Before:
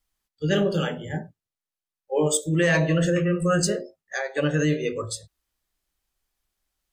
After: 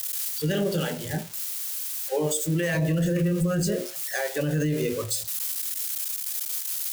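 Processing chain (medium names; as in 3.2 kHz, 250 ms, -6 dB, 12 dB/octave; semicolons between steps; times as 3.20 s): zero-crossing glitches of -23.5 dBFS; 2.74–4.95 s: bass shelf 300 Hz +9 dB; peak limiter -17.5 dBFS, peak gain reduction 10.5 dB; dynamic bell 1.2 kHz, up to -5 dB, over -54 dBFS, Q 5.2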